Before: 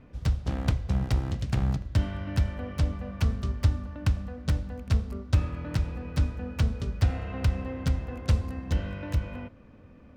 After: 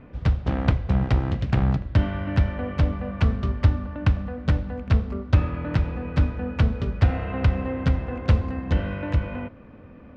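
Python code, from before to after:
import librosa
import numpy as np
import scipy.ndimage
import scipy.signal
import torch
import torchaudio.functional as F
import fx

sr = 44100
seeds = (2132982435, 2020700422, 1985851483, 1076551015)

y = scipy.signal.sosfilt(scipy.signal.butter(2, 2700.0, 'lowpass', fs=sr, output='sos'), x)
y = fx.low_shelf(y, sr, hz=120.0, db=-5.0)
y = y * librosa.db_to_amplitude(8.0)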